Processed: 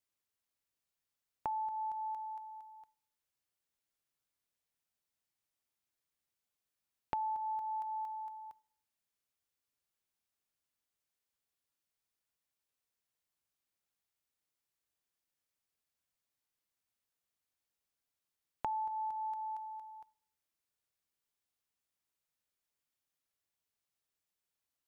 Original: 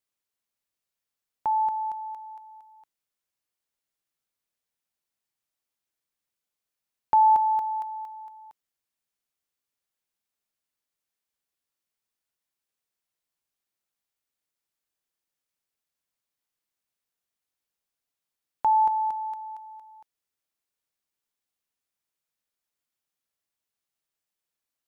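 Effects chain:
parametric band 78 Hz +5.5 dB 1.1 octaves
convolution reverb RT60 0.70 s, pre-delay 7 ms, DRR 18 dB
downward compressor 8 to 1, threshold −33 dBFS, peak gain reduction 17.5 dB
level −3 dB

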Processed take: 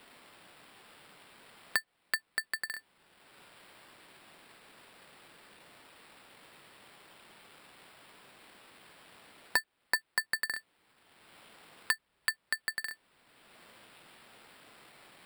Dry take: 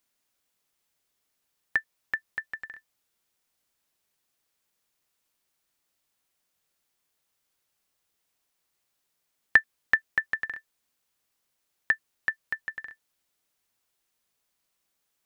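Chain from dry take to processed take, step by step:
decimation without filtering 7×
soft clipping −18.5 dBFS, distortion −7 dB
multiband upward and downward compressor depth 70%

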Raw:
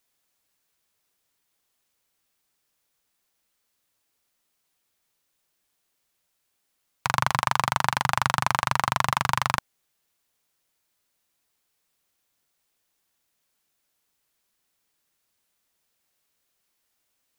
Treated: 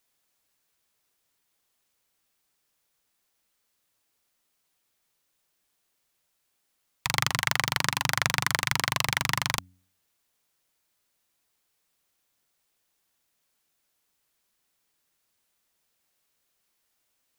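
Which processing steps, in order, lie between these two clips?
phase distortion by the signal itself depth 0.76 ms
hum removal 91.8 Hz, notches 3

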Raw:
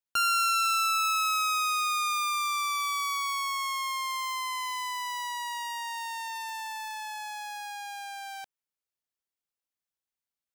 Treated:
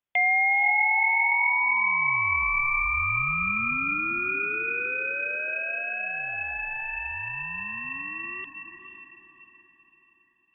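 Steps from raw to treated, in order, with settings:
voice inversion scrambler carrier 3,500 Hz
feedback delay with all-pass diffusion 466 ms, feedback 44%, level −8.5 dB
level +4.5 dB

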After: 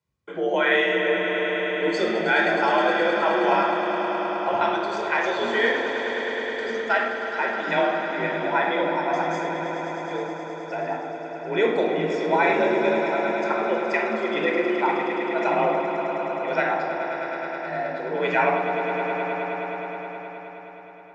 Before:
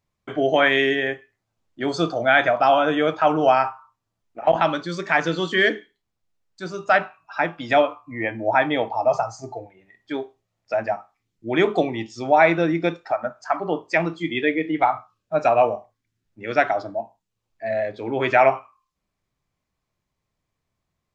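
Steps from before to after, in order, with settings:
0:04.71–0:05.39: high-pass filter 310 Hz 24 dB per octave
frequency shifter +48 Hz
on a send: echo that builds up and dies away 105 ms, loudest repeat 5, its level −11 dB
on the sum: rectangular room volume 3,800 cubic metres, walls furnished, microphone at 4.8 metres
level −7 dB

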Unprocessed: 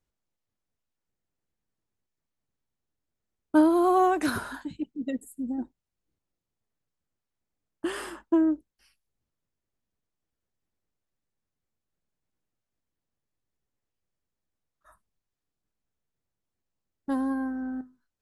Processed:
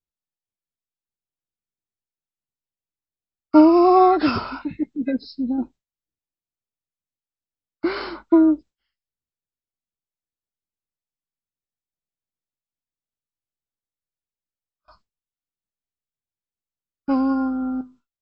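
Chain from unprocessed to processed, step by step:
hearing-aid frequency compression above 1,100 Hz 1.5 to 1
noise gate with hold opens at −51 dBFS
level +8 dB

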